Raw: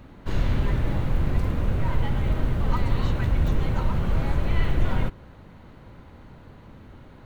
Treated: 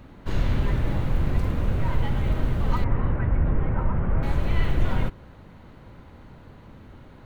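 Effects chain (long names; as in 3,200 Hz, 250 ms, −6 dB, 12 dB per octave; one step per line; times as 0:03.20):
0:02.84–0:04.23: low-pass filter 2,000 Hz 24 dB per octave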